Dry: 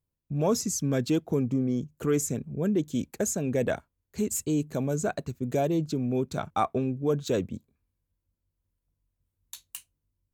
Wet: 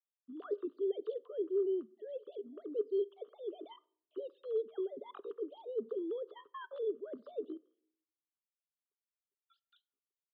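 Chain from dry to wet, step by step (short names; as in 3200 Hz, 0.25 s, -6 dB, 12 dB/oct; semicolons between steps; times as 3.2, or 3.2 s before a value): sine-wave speech; reverse; compressor 16:1, threshold -31 dBFS, peak gain reduction 15.5 dB; reverse; vowel filter u; pitch shift +5.5 st; air absorption 55 m; on a send: reverb RT60 0.60 s, pre-delay 4 ms, DRR 20 dB; on the sum: gain +5 dB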